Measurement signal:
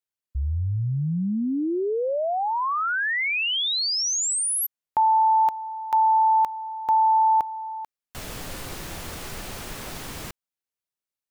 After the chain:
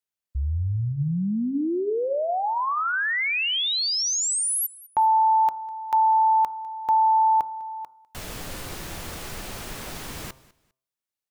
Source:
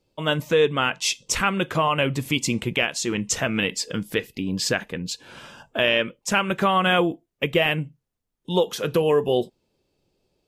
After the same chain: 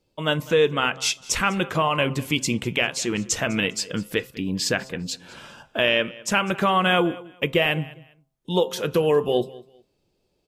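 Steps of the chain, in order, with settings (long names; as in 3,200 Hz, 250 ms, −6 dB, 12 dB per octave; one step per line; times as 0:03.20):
hum removal 131.3 Hz, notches 11
on a send: repeating echo 201 ms, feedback 24%, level −21 dB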